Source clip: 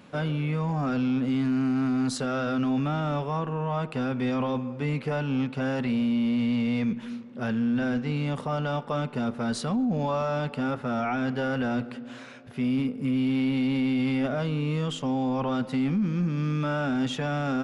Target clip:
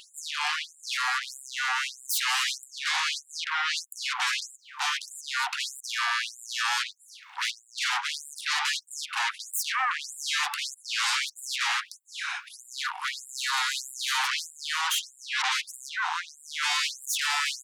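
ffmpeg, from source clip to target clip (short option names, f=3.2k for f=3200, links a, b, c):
-af "aeval=exprs='0.119*sin(PI/2*6.31*val(0)/0.119)':c=same,afftfilt=real='re*gte(b*sr/1024,720*pow(7200/720,0.5+0.5*sin(2*PI*1.6*pts/sr)))':imag='im*gte(b*sr/1024,720*pow(7200/720,0.5+0.5*sin(2*PI*1.6*pts/sr)))':win_size=1024:overlap=0.75,volume=-3.5dB"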